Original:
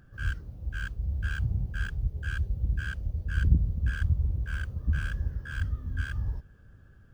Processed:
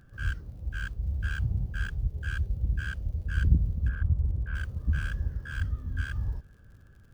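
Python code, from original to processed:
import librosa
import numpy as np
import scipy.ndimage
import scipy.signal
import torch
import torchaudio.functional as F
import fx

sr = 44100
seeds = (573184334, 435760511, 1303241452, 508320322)

y = fx.lowpass(x, sr, hz=fx.line((3.87, 1200.0), (4.54, 1900.0)), slope=12, at=(3.87, 4.54), fade=0.02)
y = fx.dmg_crackle(y, sr, seeds[0], per_s=61.0, level_db=-53.0)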